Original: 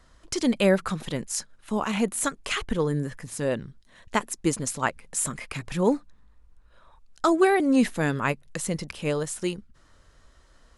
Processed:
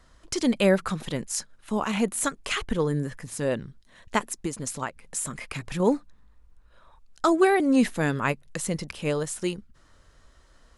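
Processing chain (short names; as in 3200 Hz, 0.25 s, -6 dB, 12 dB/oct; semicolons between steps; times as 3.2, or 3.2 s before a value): 4.3–5.8 compressor 6:1, threshold -27 dBFS, peak gain reduction 9 dB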